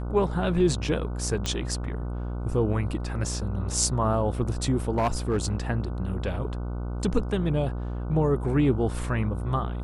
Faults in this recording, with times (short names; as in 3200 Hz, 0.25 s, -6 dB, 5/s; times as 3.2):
buzz 60 Hz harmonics 25 -31 dBFS
1.46 pop -13 dBFS
4.94–5.55 clipped -19 dBFS